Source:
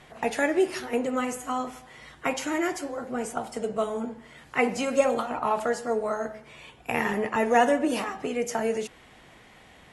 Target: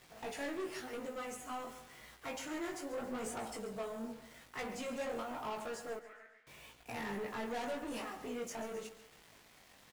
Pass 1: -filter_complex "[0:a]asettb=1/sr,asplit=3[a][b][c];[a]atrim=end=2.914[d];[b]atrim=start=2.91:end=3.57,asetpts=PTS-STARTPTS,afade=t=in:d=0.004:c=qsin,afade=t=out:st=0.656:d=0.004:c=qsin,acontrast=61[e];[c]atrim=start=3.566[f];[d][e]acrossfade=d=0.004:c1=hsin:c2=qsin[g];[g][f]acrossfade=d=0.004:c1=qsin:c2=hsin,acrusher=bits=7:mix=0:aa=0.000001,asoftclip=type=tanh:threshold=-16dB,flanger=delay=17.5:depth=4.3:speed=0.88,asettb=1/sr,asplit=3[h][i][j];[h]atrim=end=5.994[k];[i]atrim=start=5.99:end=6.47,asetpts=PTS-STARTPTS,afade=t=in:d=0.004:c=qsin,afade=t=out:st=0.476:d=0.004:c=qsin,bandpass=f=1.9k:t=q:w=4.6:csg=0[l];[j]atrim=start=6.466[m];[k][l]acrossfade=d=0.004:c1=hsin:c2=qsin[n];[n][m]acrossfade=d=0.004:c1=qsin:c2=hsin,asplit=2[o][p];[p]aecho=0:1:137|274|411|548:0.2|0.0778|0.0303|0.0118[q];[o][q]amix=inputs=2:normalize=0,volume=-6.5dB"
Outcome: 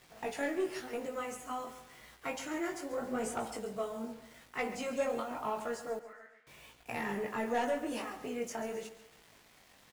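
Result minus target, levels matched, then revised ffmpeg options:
soft clip: distortion -10 dB
-filter_complex "[0:a]asettb=1/sr,asplit=3[a][b][c];[a]atrim=end=2.914[d];[b]atrim=start=2.91:end=3.57,asetpts=PTS-STARTPTS,afade=t=in:d=0.004:c=qsin,afade=t=out:st=0.656:d=0.004:c=qsin,acontrast=61[e];[c]atrim=start=3.566[f];[d][e]acrossfade=d=0.004:c1=hsin:c2=qsin[g];[g][f]acrossfade=d=0.004:c1=qsin:c2=hsin,acrusher=bits=7:mix=0:aa=0.000001,asoftclip=type=tanh:threshold=-28dB,flanger=delay=17.5:depth=4.3:speed=0.88,asettb=1/sr,asplit=3[h][i][j];[h]atrim=end=5.994[k];[i]atrim=start=5.99:end=6.47,asetpts=PTS-STARTPTS,afade=t=in:d=0.004:c=qsin,afade=t=out:st=0.476:d=0.004:c=qsin,bandpass=f=1.9k:t=q:w=4.6:csg=0[l];[j]atrim=start=6.466[m];[k][l]acrossfade=d=0.004:c1=hsin:c2=qsin[n];[n][m]acrossfade=d=0.004:c1=qsin:c2=hsin,asplit=2[o][p];[p]aecho=0:1:137|274|411|548:0.2|0.0778|0.0303|0.0118[q];[o][q]amix=inputs=2:normalize=0,volume=-6.5dB"

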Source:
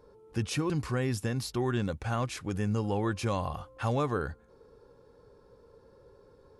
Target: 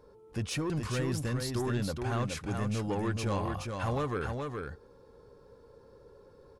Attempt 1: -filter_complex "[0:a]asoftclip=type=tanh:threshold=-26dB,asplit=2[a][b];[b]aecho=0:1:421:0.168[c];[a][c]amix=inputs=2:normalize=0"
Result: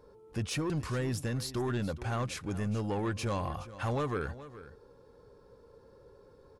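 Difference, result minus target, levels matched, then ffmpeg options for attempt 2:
echo-to-direct -11 dB
-filter_complex "[0:a]asoftclip=type=tanh:threshold=-26dB,asplit=2[a][b];[b]aecho=0:1:421:0.596[c];[a][c]amix=inputs=2:normalize=0"

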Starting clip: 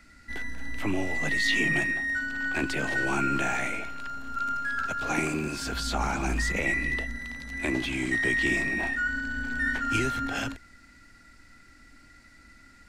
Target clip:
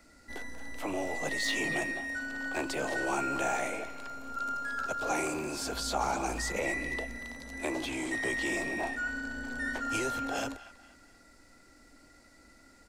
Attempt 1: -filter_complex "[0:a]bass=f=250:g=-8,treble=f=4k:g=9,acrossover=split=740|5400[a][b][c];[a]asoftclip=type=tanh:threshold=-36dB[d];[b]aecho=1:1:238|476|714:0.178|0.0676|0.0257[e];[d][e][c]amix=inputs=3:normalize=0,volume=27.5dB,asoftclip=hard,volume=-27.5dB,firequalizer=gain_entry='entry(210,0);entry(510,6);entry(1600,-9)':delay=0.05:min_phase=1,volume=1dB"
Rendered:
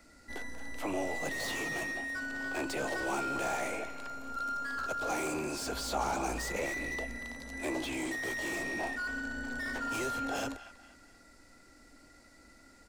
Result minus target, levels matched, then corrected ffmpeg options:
overloaded stage: distortion +21 dB
-filter_complex "[0:a]bass=f=250:g=-8,treble=f=4k:g=9,acrossover=split=740|5400[a][b][c];[a]asoftclip=type=tanh:threshold=-36dB[d];[b]aecho=1:1:238|476|714:0.178|0.0676|0.0257[e];[d][e][c]amix=inputs=3:normalize=0,volume=16.5dB,asoftclip=hard,volume=-16.5dB,firequalizer=gain_entry='entry(210,0);entry(510,6);entry(1600,-9)':delay=0.05:min_phase=1,volume=1dB"

